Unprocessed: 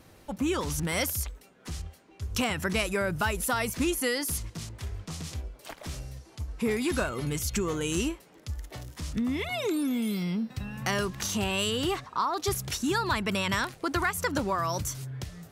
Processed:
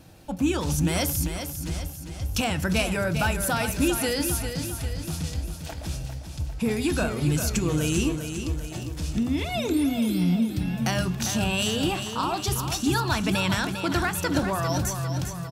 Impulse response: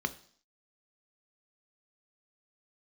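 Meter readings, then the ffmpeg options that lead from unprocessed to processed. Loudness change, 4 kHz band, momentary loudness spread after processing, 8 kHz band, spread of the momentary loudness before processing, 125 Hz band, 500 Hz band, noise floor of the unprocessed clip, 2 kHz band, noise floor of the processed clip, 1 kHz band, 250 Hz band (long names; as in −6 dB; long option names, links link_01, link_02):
+4.0 dB, +3.5 dB, 9 LU, +4.0 dB, 13 LU, +8.0 dB, +2.0 dB, −55 dBFS, +1.5 dB, −37 dBFS, +2.0 dB, +5.5 dB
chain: -filter_complex "[0:a]aecho=1:1:400|800|1200|1600|2000|2400:0.398|0.207|0.108|0.056|0.0291|0.0151,asplit=2[link_01][link_02];[1:a]atrim=start_sample=2205[link_03];[link_02][link_03]afir=irnorm=-1:irlink=0,volume=-11dB[link_04];[link_01][link_04]amix=inputs=2:normalize=0,volume=5dB"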